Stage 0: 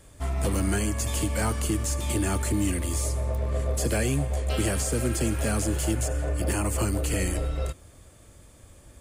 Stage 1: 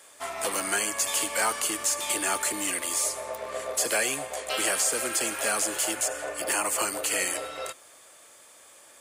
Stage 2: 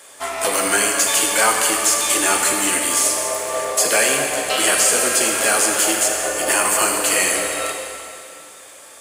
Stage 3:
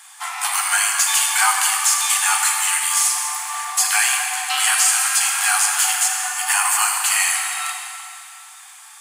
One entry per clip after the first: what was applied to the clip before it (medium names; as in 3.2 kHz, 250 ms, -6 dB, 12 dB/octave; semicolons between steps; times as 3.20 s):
high-pass 730 Hz 12 dB/octave; trim +6 dB
plate-style reverb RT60 2.6 s, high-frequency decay 0.95×, pre-delay 0 ms, DRR 1 dB; trim +8 dB
brick-wall FIR high-pass 710 Hz